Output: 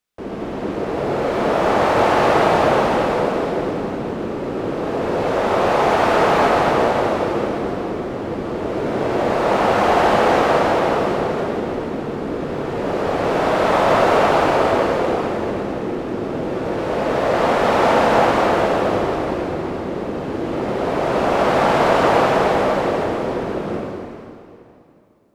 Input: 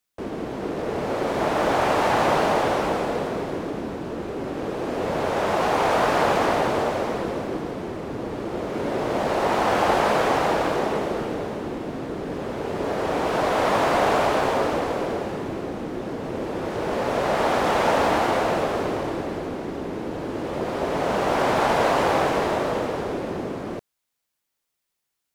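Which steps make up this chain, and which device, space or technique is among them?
swimming-pool hall (convolution reverb RT60 2.6 s, pre-delay 55 ms, DRR −3 dB; high-shelf EQ 5,700 Hz −7 dB)
level +1 dB

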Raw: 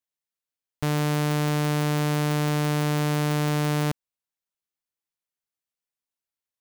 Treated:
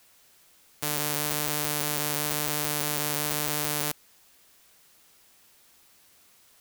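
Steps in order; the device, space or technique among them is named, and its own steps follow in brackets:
turntable without a phono preamp (RIAA equalisation recording; white noise bed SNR 27 dB)
level −4.5 dB

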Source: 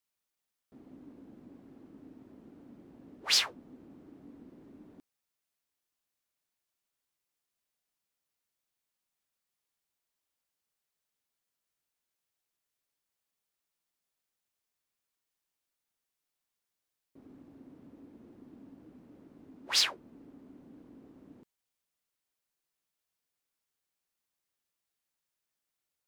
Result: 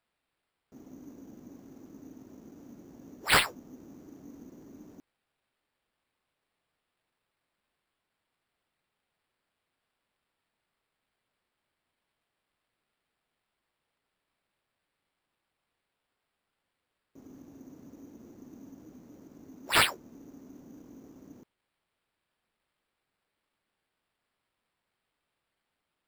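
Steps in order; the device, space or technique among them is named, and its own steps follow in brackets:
crushed at another speed (tape speed factor 0.5×; decimation without filtering 14×; tape speed factor 2×)
level +3.5 dB

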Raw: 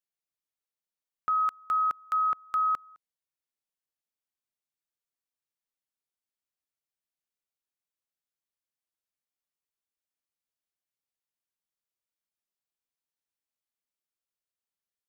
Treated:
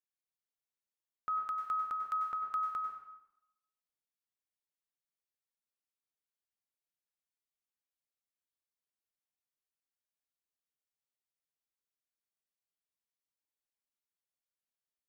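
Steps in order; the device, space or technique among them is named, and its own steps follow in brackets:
bathroom (convolution reverb RT60 0.90 s, pre-delay 90 ms, DRR 3 dB)
level −8 dB

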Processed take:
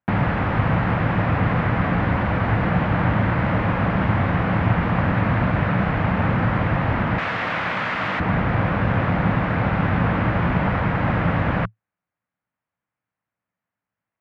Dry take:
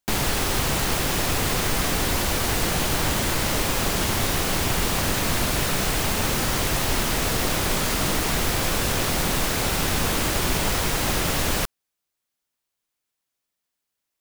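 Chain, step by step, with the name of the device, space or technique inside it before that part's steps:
bass cabinet (loudspeaker in its box 63–2,000 Hz, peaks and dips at 110 Hz +9 dB, 180 Hz +7 dB, 390 Hz −9 dB)
0:07.18–0:08.20: spectral tilt +4.5 dB per octave
level +4.5 dB

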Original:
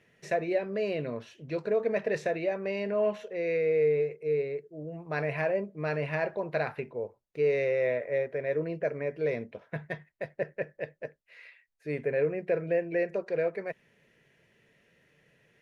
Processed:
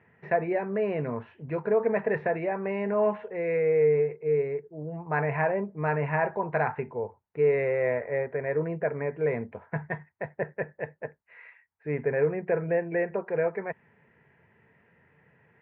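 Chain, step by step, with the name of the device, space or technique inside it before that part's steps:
bass cabinet (loudspeaker in its box 71–2,000 Hz, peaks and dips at 88 Hz +8 dB, 320 Hz −5 dB, 570 Hz −7 dB, 890 Hz +9 dB)
level +5 dB

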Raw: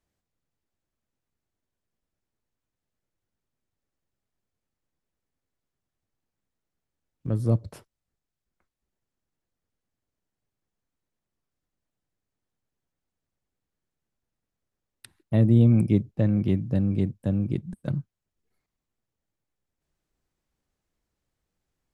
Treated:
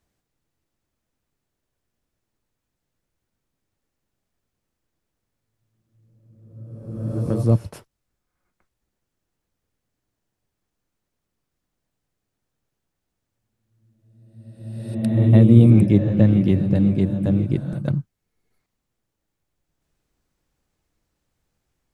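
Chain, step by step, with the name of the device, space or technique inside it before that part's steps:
reverse reverb (reversed playback; convolution reverb RT60 1.4 s, pre-delay 101 ms, DRR 5 dB; reversed playback)
level +5.5 dB

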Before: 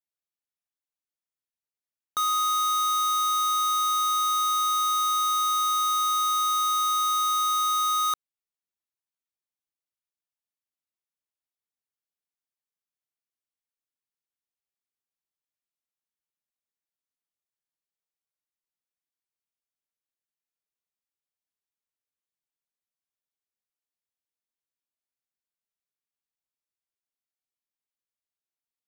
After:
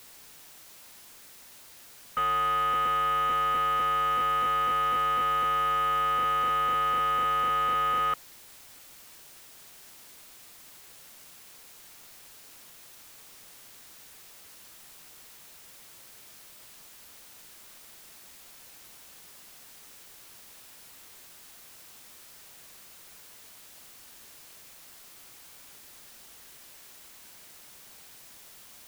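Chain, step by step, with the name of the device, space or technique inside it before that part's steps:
army field radio (band-pass filter 330–3,000 Hz; variable-slope delta modulation 16 kbit/s; white noise bed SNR 18 dB)

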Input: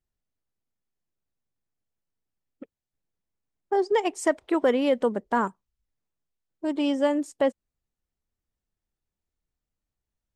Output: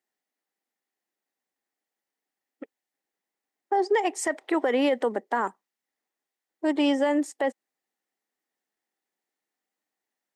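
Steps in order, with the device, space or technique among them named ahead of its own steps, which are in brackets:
laptop speaker (high-pass filter 260 Hz 24 dB per octave; parametric band 790 Hz +8 dB 0.2 octaves; parametric band 1,900 Hz +9 dB 0.31 octaves; brickwall limiter −19 dBFS, peak gain reduction 12 dB)
level +3.5 dB

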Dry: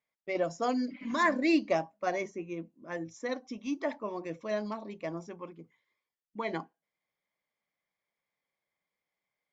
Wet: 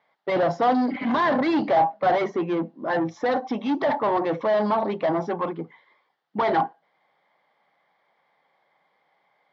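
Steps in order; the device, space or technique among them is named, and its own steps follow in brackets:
overdrive pedal into a guitar cabinet (mid-hump overdrive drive 32 dB, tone 1,600 Hz, clips at −14.5 dBFS; loudspeaker in its box 110–4,300 Hz, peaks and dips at 150 Hz +6 dB, 800 Hz +8 dB, 2,500 Hz −9 dB)

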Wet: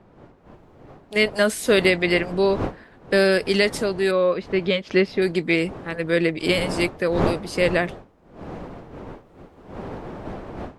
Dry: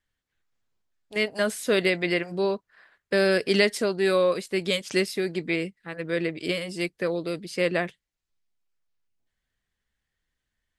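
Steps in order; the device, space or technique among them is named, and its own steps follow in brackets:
0:04.11–0:05.22: high-frequency loss of the air 270 metres
smartphone video outdoors (wind on the microphone 540 Hz −39 dBFS; automatic gain control gain up to 16 dB; level −5 dB; AAC 96 kbit/s 48,000 Hz)

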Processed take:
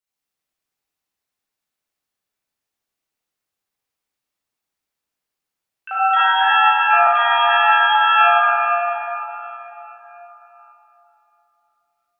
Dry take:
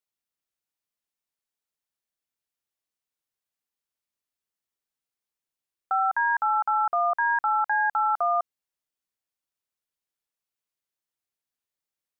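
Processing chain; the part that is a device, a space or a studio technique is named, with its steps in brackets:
shimmer-style reverb (pitch-shifted copies added +12 semitones −6 dB; convolution reverb RT60 3.9 s, pre-delay 32 ms, DRR −10.5 dB)
0:06.20–0:07.07: Butterworth high-pass 420 Hz
level −2 dB

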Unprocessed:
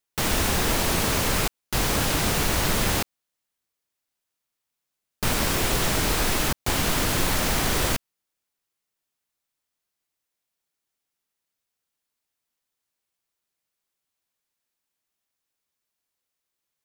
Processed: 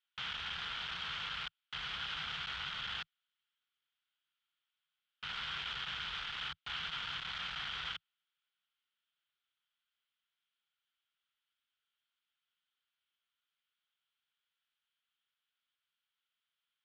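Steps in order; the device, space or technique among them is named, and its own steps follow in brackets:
scooped metal amplifier (tube saturation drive 36 dB, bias 0.45; loudspeaker in its box 84–3,600 Hz, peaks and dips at 96 Hz −9 dB, 160 Hz +5 dB, 280 Hz +6 dB, 590 Hz −8 dB, 1,400 Hz +10 dB, 3,200 Hz +10 dB; guitar amp tone stack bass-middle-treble 10-0-10)
level +2 dB

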